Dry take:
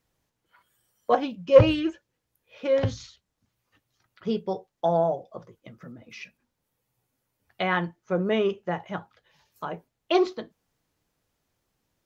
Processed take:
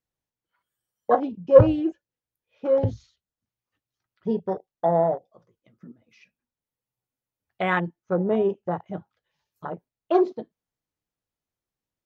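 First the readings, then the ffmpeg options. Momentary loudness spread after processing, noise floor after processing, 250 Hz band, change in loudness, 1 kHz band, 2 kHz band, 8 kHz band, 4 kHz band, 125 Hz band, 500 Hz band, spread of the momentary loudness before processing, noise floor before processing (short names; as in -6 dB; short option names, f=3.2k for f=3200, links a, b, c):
21 LU, under -85 dBFS, +2.0 dB, +2.0 dB, +1.5 dB, -0.5 dB, n/a, -11.0 dB, +2.0 dB, +2.0 dB, 22 LU, -81 dBFS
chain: -af "afwtdn=0.0355,volume=2dB"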